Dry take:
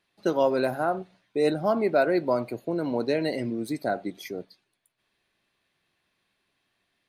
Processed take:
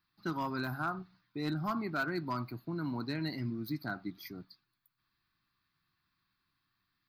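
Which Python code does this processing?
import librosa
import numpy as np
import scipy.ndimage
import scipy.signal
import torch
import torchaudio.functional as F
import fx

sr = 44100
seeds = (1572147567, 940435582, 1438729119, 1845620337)

y = fx.curve_eq(x, sr, hz=(150.0, 220.0, 310.0, 510.0, 1200.0, 1900.0, 3100.0, 4700.0, 8200.0, 15000.0), db=(0, -7, -7, -27, 1, -8, -12, -1, -29, 7))
y = np.clip(10.0 ** (26.5 / 20.0) * y, -1.0, 1.0) / 10.0 ** (26.5 / 20.0)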